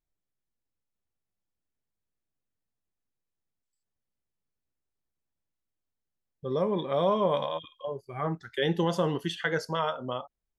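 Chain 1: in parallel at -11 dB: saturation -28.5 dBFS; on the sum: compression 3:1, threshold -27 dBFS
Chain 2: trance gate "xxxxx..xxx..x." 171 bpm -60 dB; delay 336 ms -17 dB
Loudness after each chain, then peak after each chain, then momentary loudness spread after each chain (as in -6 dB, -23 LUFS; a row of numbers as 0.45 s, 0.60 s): -32.0 LUFS, -32.0 LUFS; -14.5 dBFS, -14.0 dBFS; 6 LU, 10 LU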